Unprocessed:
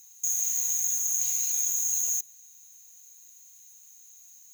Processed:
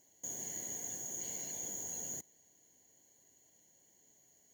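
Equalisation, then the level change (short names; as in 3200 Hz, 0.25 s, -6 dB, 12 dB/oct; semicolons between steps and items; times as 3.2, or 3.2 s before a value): running mean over 35 samples; HPF 95 Hz 12 dB/oct; +13.0 dB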